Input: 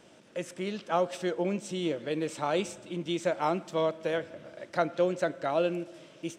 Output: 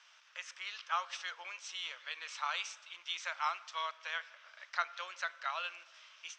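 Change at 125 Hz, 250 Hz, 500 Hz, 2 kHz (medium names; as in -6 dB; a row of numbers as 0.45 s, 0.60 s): under -40 dB, under -40 dB, -25.0 dB, +0.5 dB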